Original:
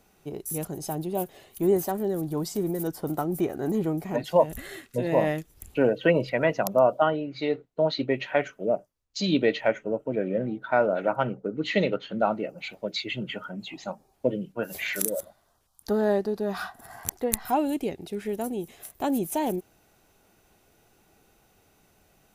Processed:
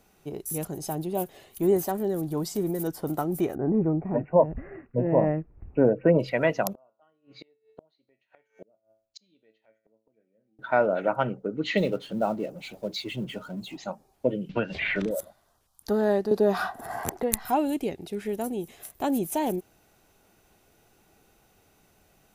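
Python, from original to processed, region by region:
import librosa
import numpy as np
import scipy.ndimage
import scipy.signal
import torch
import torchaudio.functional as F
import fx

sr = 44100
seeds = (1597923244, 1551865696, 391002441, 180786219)

y = fx.chain(x, sr, fx.lowpass(hz=1100.0, slope=12),
    fx.low_shelf(hz=230.0, db=6.0),
    fx.resample_bad(factor=8, down='none', up='filtered'), at=(3.55, 6.19))
y = fx.chain(y, sr, fx.low_shelf(hz=81.0, db=-11.0),
    fx.comb_fb(f0_hz=110.0, decay_s=0.42, harmonics='all', damping=0.0, mix_pct=70),
    fx.gate_flip(shuts_db=-32.0, range_db=-34), at=(6.73, 10.59))
y = fx.chain(y, sr, fx.law_mismatch(coded='mu'),
    fx.peak_eq(hz=1800.0, db=-9.0, octaves=2.0), at=(11.77, 13.77))
y = fx.chain(y, sr, fx.lowpass(hz=3400.0, slope=24),
    fx.low_shelf(hz=230.0, db=11.0),
    fx.band_squash(depth_pct=100), at=(14.49, 15.11))
y = fx.chain(y, sr, fx.peak_eq(hz=490.0, db=9.0, octaves=2.6),
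    fx.band_squash(depth_pct=40), at=(16.31, 17.23))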